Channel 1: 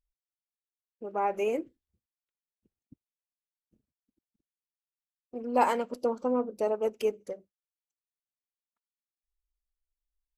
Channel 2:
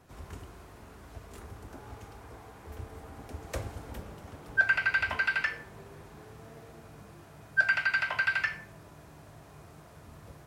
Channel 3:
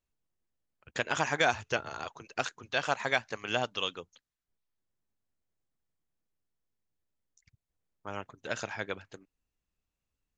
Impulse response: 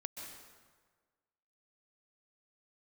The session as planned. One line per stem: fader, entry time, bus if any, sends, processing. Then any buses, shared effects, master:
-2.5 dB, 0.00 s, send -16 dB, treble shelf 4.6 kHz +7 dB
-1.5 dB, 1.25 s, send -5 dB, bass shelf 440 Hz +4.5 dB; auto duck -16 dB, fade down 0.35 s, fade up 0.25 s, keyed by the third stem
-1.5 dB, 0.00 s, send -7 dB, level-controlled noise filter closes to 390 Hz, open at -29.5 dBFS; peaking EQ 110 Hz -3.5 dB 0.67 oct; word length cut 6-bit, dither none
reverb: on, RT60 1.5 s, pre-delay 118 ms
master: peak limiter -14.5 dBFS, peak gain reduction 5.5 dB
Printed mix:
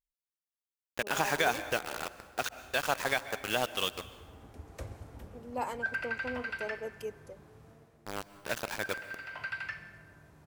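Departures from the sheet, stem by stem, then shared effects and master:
stem 1 -2.5 dB -> -12.0 dB; stem 2 -1.5 dB -> -12.5 dB

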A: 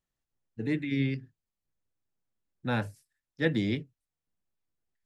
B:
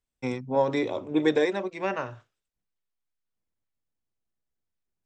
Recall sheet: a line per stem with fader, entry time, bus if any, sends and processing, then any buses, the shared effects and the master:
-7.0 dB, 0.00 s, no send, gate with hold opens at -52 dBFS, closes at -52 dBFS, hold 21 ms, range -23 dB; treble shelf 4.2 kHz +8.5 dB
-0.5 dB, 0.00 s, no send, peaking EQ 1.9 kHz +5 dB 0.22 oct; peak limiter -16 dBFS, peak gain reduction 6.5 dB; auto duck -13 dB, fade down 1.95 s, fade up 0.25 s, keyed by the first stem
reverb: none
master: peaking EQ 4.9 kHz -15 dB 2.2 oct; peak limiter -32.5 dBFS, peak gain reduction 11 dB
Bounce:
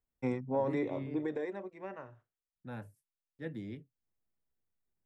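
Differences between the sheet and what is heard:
stem A -7.0 dB -> -13.5 dB; master: missing peak limiter -32.5 dBFS, peak gain reduction 11 dB

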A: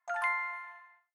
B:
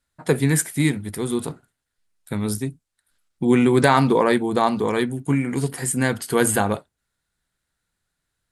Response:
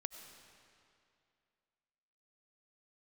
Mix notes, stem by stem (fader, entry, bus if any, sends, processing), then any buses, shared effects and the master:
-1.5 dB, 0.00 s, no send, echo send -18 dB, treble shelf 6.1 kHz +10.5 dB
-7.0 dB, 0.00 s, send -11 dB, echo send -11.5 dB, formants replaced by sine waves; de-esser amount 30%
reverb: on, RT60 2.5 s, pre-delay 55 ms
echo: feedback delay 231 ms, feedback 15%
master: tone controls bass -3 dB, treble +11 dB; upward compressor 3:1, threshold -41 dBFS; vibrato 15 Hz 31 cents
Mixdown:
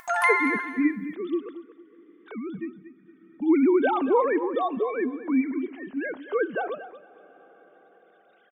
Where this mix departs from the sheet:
stem A -1.5 dB -> +9.0 dB; master: missing tone controls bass -3 dB, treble +11 dB

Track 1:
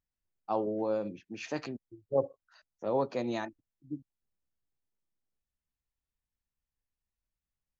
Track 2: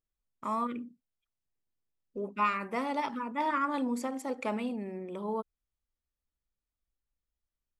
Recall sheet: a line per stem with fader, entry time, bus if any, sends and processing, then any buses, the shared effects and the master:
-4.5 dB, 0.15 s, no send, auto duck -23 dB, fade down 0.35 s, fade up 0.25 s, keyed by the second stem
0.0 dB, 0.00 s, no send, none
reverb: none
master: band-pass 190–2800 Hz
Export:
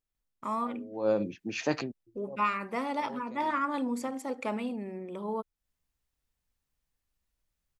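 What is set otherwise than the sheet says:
stem 1 -4.5 dB -> +6.5 dB; master: missing band-pass 190–2800 Hz

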